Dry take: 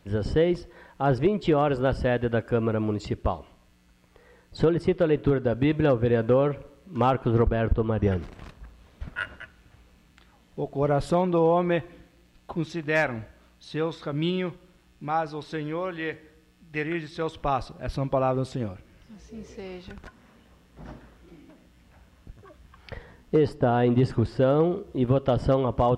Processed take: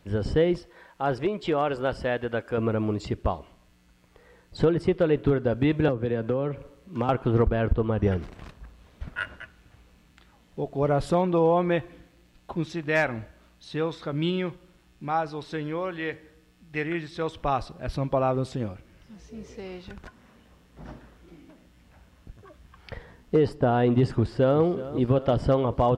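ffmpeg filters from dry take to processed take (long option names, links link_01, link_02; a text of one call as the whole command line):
ffmpeg -i in.wav -filter_complex "[0:a]asettb=1/sr,asplit=3[link_01][link_02][link_03];[link_01]atrim=end=0.584[link_04];[link_02]atrim=start=0.58:end=2.58,asetpts=PTS-STARTPTS,afade=type=in:duration=0.004:curve=qsin,afade=type=out:start_time=1.996:duration=0.004:curve=qsin,lowshelf=frequency=310:gain=-9.5[link_05];[link_03]atrim=start=2.576[link_06];[link_04][link_05]acrossfade=duration=0.004:curve1=hsin:curve2=qsin[link_07];[link_07][link_06]acrossfade=duration=0.004:curve1=qsin:curve2=hsin,asettb=1/sr,asplit=3[link_08][link_09][link_10];[link_08]atrim=end=5.884[link_11];[link_09]atrim=start=5.88:end=7.09,asetpts=PTS-STARTPTS,afade=type=in:duration=0.004:curve=qsin,afade=type=out:start_time=1.206:duration=0.004:curve=qsin,acrossover=split=120|430[link_12][link_13][link_14];[link_12]acompressor=threshold=-39dB:ratio=4[link_15];[link_13]acompressor=threshold=-27dB:ratio=4[link_16];[link_14]acompressor=threshold=-31dB:ratio=4[link_17];[link_15][link_16][link_17]amix=inputs=3:normalize=0[link_18];[link_10]atrim=start=7.086[link_19];[link_11][link_18]acrossfade=duration=0.004:curve1=hsin:curve2=qsin[link_20];[link_20][link_19]acrossfade=duration=0.004:curve1=qsin:curve2=hsin,asplit=2[link_21][link_22];[link_22]afade=type=in:start_time=24.1:duration=0.01,afade=type=out:start_time=24.62:duration=0.01,aecho=0:1:370|740|1110|1480|1850|2220|2590|2960|3330:0.177828|0.12448|0.0871357|0.060995|0.0426965|0.0298875|0.0209213|0.0146449|0.0102514[link_23];[link_21][link_23]amix=inputs=2:normalize=0" out.wav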